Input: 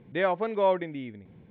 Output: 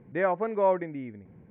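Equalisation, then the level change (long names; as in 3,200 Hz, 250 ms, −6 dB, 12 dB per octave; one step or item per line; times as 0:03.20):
low-pass filter 2,100 Hz 24 dB per octave
0.0 dB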